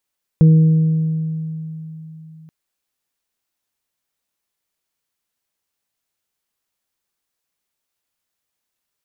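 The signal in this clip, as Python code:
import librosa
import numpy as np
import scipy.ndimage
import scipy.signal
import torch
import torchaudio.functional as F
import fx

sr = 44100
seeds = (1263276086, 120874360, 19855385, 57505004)

y = fx.additive(sr, length_s=2.08, hz=159.0, level_db=-5.5, upper_db=(-17.5, -18), decay_s=3.65, upper_decays_s=(1.82, 1.92))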